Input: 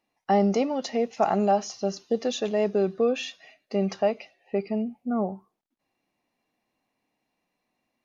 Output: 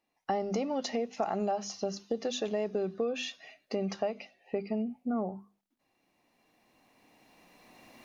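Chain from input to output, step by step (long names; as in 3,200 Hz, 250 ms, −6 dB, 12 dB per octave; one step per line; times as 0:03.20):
camcorder AGC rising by 10 dB per second
mains-hum notches 50/100/150/200/250 Hz
downward compressor, threshold −24 dBFS, peak gain reduction 7 dB
level −3.5 dB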